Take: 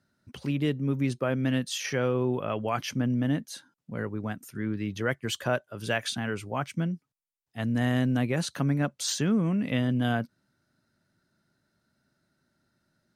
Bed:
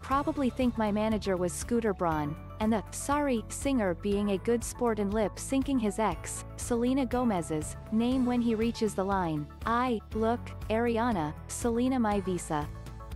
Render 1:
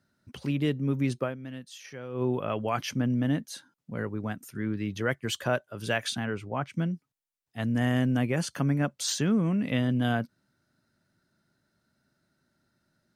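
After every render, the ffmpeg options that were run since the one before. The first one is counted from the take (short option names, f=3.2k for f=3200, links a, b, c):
-filter_complex "[0:a]asplit=3[a][b][c];[a]afade=t=out:st=6.24:d=0.02[d];[b]lowpass=f=2.1k:p=1,afade=t=in:st=6.24:d=0.02,afade=t=out:st=6.72:d=0.02[e];[c]afade=t=in:st=6.72:d=0.02[f];[d][e][f]amix=inputs=3:normalize=0,asettb=1/sr,asplit=3[g][h][i];[g]atrim=end=7.674[j];[h]atrim=start=7.67:end=8.88,asetpts=PTS-STARTPTS,afade=t=in:d=0.004:c=qsin,afade=t=out:st=1.206:d=0.004:c=qsin,asuperstop=centerf=3900:order=4:qfactor=6.6[k];[i]atrim=start=8.876[l];[j][k]acrossfade=d=0.004:c1=hsin:c2=qsin[m];[m][l]acrossfade=d=0.004:c1=qsin:c2=hsin,asplit=3[n][o][p];[n]atrim=end=1.39,asetpts=PTS-STARTPTS,afade=t=out:st=1.23:d=0.16:c=qua:silence=0.211349[q];[o]atrim=start=1.39:end=2.07,asetpts=PTS-STARTPTS,volume=-13.5dB[r];[p]atrim=start=2.07,asetpts=PTS-STARTPTS,afade=t=in:d=0.16:c=qua:silence=0.211349[s];[q][r][s]concat=n=3:v=0:a=1"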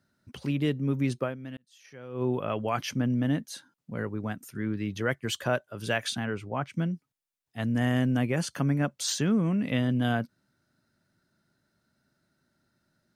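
-filter_complex "[0:a]asplit=2[a][b];[a]atrim=end=1.57,asetpts=PTS-STARTPTS,afade=t=out:st=1.566:d=0.004:c=hsin[c];[b]atrim=start=1.57,asetpts=PTS-STARTPTS,afade=t=in:d=0.71[d];[c][d]concat=n=2:v=0:a=1"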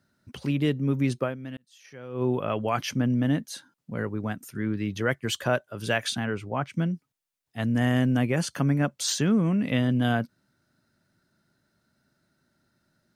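-af "volume=2.5dB"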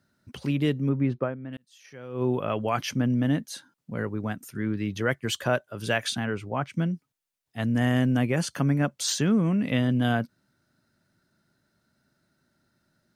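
-filter_complex "[0:a]asettb=1/sr,asplit=3[a][b][c];[a]atrim=end=0.894[d];[b]atrim=start=0.89:end=1.53,asetpts=PTS-STARTPTS,afade=t=in:d=0.004:c=qsin,afade=t=out:st=0.636:d=0.004:c=qsin,lowpass=1.7k[e];[c]atrim=start=1.526[f];[d][e]acrossfade=d=0.004:c1=hsin:c2=qsin[g];[g][f]acrossfade=d=0.004:c1=qsin:c2=hsin"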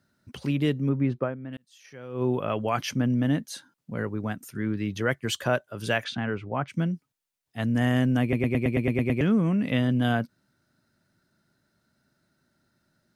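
-filter_complex "[0:a]asettb=1/sr,asplit=3[a][b][c];[a]atrim=end=6.044[d];[b]atrim=start=6.04:end=6.68,asetpts=PTS-STARTPTS,afade=t=in:d=0.004:c=qsin,afade=t=out:st=0.636:d=0.004:c=qsin,lowpass=3.2k[e];[c]atrim=start=6.676[f];[d][e]acrossfade=d=0.004:c1=hsin:c2=qsin[g];[g][f]acrossfade=d=0.004:c1=qsin:c2=hsin,asplit=10[h][i][j][k][l][m][n][o][p][q];[h]atrim=end=8.332[r];[i]atrim=start=8.218:end=8.332[s];[j]atrim=start=8.218:end=8.332[t];[k]atrim=start=8.218:end=8.332[u];[l]atrim=start=8.218:end=8.332[v];[m]atrim=start=8.218:end=8.332[w];[n]atrim=start=8.218:end=8.332[x];[o]atrim=start=8.218:end=8.332[y];[p]atrim=start=8.218:end=8.332[z];[q]atrim=start=9.208[aa];[r][s]acrossfade=d=0.004:c1=hsin:c2=hsin[ab];[ab][t]acrossfade=d=0.004:c1=hsin:c2=hsin[ac];[ac][u]acrossfade=d=0.004:c1=hsin:c2=hsin[ad];[ad][v]acrossfade=d=0.004:c1=hsin:c2=hsin[ae];[ae][w]acrossfade=d=0.004:c1=hsin:c2=hsin[af];[af][x]acrossfade=d=0.004:c1=hsin:c2=hsin[ag];[ag][y]acrossfade=d=0.004:c1=hsin:c2=hsin[ah];[ah][z]acrossfade=d=0.004:c1=hsin:c2=hsin[ai];[ai][aa]acrossfade=d=0.004:c1=hsin:c2=hsin"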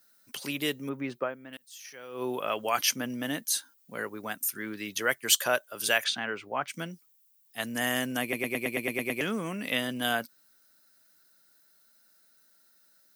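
-af "highpass=f=270:p=1,aemphasis=mode=production:type=riaa"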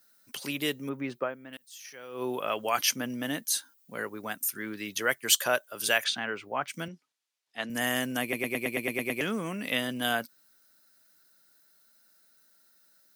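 -filter_complex "[0:a]asettb=1/sr,asplit=3[a][b][c];[a]atrim=end=6.884[d];[b]atrim=start=6.88:end=7.7,asetpts=PTS-STARTPTS,afade=t=in:d=0.004:c=qsin,afade=t=out:st=0.816:d=0.004:c=qsin,highpass=170,lowpass=4.3k[e];[c]atrim=start=7.696[f];[d][e]acrossfade=d=0.004:c1=hsin:c2=qsin[g];[g][f]acrossfade=d=0.004:c1=qsin:c2=hsin"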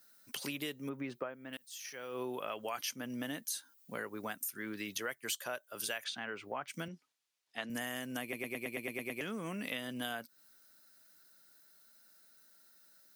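-af "acompressor=threshold=-37dB:ratio=5"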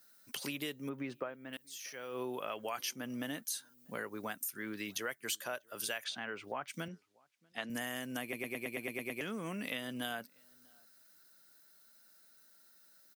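-filter_complex "[0:a]asplit=2[a][b];[b]adelay=641.4,volume=-29dB,highshelf=f=4k:g=-14.4[c];[a][c]amix=inputs=2:normalize=0"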